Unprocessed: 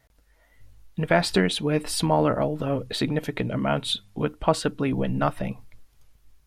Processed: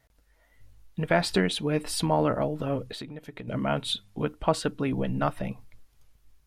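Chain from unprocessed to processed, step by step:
0:02.87–0:03.48: downward compressor 12 to 1, threshold −33 dBFS, peak gain reduction 14 dB
level −3 dB

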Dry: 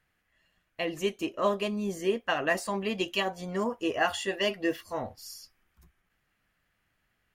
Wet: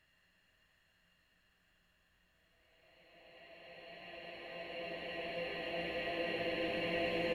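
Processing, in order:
extreme stretch with random phases 22×, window 0.50 s, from 0:00.46
echo with shifted repeats 106 ms, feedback 53%, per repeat −110 Hz, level −10 dB
level −3 dB

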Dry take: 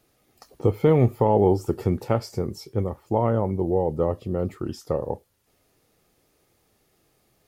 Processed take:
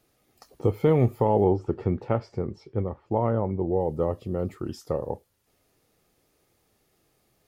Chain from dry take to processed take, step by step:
0:01.44–0:03.81: low-pass filter 2,700 Hz 12 dB per octave
level −2.5 dB

